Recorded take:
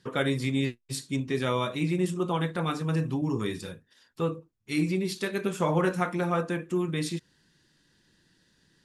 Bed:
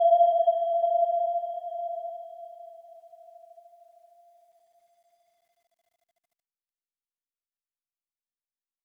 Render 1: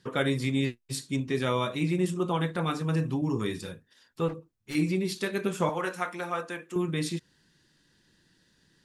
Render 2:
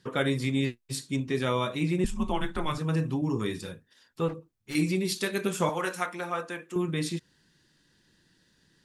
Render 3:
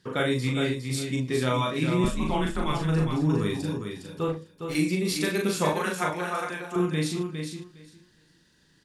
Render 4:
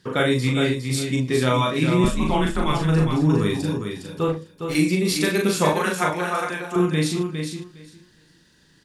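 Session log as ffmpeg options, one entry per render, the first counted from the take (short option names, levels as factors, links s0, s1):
-filter_complex "[0:a]asettb=1/sr,asplit=3[s0][s1][s2];[s0]atrim=end=4.284[s3];[s1]atrim=start=4.28:end=4.75,asetpts=PTS-STARTPTS,afade=t=in:d=0.004:c=qsin,afade=t=out:st=0.466:d=0.004:c=qsin,asoftclip=type=hard:threshold=0.0224[s4];[s2]atrim=start=4.746[s5];[s3][s4]acrossfade=d=0.004:c1=hsin:c2=qsin[s6];[s6][s5]acrossfade=d=0.004:c1=qsin:c2=hsin,asettb=1/sr,asplit=3[s7][s8][s9];[s7]atrim=end=5.694[s10];[s8]atrim=start=5.69:end=6.76,asetpts=PTS-STARTPTS,afade=t=in:d=0.004:c=qsin,afade=t=out:st=1.066:d=0.004:c=qsin,highpass=f=840:p=1[s11];[s9]atrim=start=6.756[s12];[s10][s11]acrossfade=d=0.004:c1=hsin:c2=qsin[s13];[s13][s12]acrossfade=d=0.004:c1=qsin:c2=hsin"
-filter_complex "[0:a]asettb=1/sr,asplit=3[s0][s1][s2];[s0]atrim=end=2.044[s3];[s1]atrim=start=2.04:end=2.78,asetpts=PTS-STARTPTS,afade=t=in:d=0.004:c=qsin,afade=t=out:st=0.736:d=0.004:c=qsin,afreqshift=-150[s4];[s2]atrim=start=2.776[s5];[s3][s4]acrossfade=d=0.004:c1=hsin:c2=qsin[s6];[s6][s5]acrossfade=d=0.004:c1=qsin:c2=hsin,asettb=1/sr,asplit=3[s7][s8][s9];[s7]atrim=end=4.754[s10];[s8]atrim=start=4.75:end=6.06,asetpts=PTS-STARTPTS,afade=t=in:d=0.004:c=qsin,afade=t=out:st=1.306:d=0.004:c=qsin,highshelf=f=3500:g=7[s11];[s9]atrim=start=6.056[s12];[s10][s11]acrossfade=d=0.004:c1=hsin:c2=qsin[s13];[s13][s12]acrossfade=d=0.004:c1=qsin:c2=hsin"
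-filter_complex "[0:a]asplit=2[s0][s1];[s1]adelay=39,volume=0.75[s2];[s0][s2]amix=inputs=2:normalize=0,aecho=1:1:409|818|1227:0.473|0.071|0.0106"
-af "volume=1.88"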